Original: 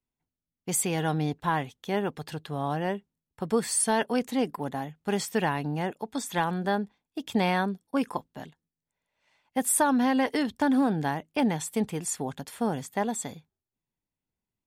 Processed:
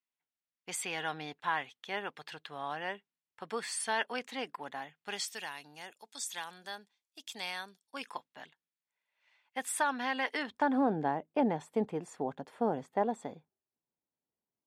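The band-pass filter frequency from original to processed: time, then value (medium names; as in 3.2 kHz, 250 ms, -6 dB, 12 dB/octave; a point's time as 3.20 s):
band-pass filter, Q 0.84
4.99 s 2.2 kHz
5.39 s 6.3 kHz
7.73 s 6.3 kHz
8.29 s 2.2 kHz
10.31 s 2.2 kHz
10.88 s 560 Hz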